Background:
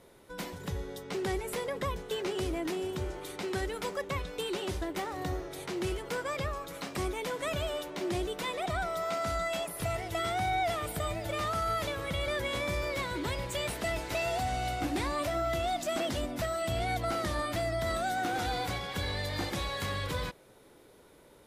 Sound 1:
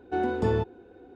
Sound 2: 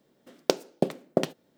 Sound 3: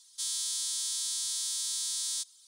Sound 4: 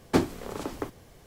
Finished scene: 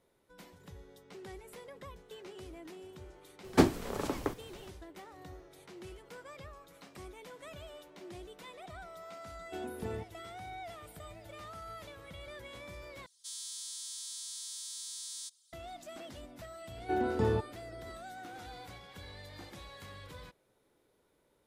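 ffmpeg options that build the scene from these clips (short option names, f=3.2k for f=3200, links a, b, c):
-filter_complex "[1:a]asplit=2[a][b];[0:a]volume=-15dB[c];[a]equalizer=f=770:w=1.5:g=-3[d];[c]asplit=2[e][f];[e]atrim=end=13.064[g];[3:a]atrim=end=2.47,asetpts=PTS-STARTPTS,volume=-10dB[h];[f]atrim=start=15.526[i];[4:a]atrim=end=1.26,asetpts=PTS-STARTPTS,volume=-0.5dB,afade=t=in:d=0.004:c=hsin,afade=t=out:st=1.256:d=0.004:c=hsin,adelay=3440[j];[d]atrim=end=1.15,asetpts=PTS-STARTPTS,volume=-13.5dB,afade=t=in:d=0.004:c=hsin,afade=t=out:st=1.146:d=0.004:c=hsin,adelay=9400[k];[b]atrim=end=1.15,asetpts=PTS-STARTPTS,volume=-4.5dB,afade=t=in:d=0.004:c=hsin,afade=t=out:st=1.146:d=0.004:c=hsin,adelay=16770[l];[g][h]acrossfade=d=0.004:c1=hsin:c2=hsin[m];[m][i]acrossfade=d=0.004:c1=hsin:c2=hsin[n];[n][j][k][l]amix=inputs=4:normalize=0"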